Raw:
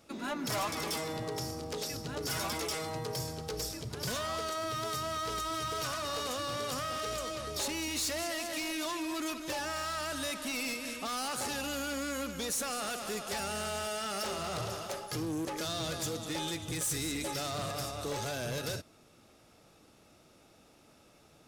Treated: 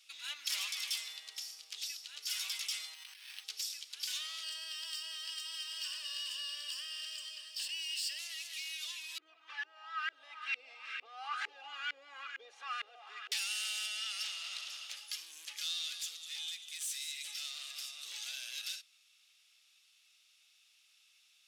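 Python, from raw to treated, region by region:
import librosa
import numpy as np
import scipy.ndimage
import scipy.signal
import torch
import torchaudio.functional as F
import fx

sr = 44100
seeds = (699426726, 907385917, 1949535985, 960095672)

y = fx.chain(x, sr, fx.steep_highpass(hz=800.0, slope=36),
    fx.over_compress(threshold_db=-47.0, ratio=-1.0),
    fx.sample_hold(seeds[0], rate_hz=7100.0, jitter_pct=0), at=(2.94, 3.44))
y = fx.chain(y, sr, fx.median_filter(points=3),
    fx.ripple_eq(per_octave=1.3, db=13), at=(4.43, 8.19))
y = fx.chain(y, sr, fx.comb(ms=2.5, depth=0.7),
    fx.filter_lfo_lowpass(shape='saw_up', hz=2.2, low_hz=410.0, high_hz=1800.0, q=4.3), at=(9.18, 13.32))
y = fx.chain(y, sr, fx.highpass(hz=360.0, slope=12),
    fx.high_shelf(hz=9000.0, db=-10.0), at=(13.86, 14.97))
y = scipy.signal.sosfilt(scipy.signal.cheby1(3, 1.0, 2900.0, 'highpass', fs=sr, output='sos'), y)
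y = fx.rider(y, sr, range_db=10, speed_s=2.0)
y = fx.tilt_eq(y, sr, slope=-4.0)
y = y * 10.0 ** (8.0 / 20.0)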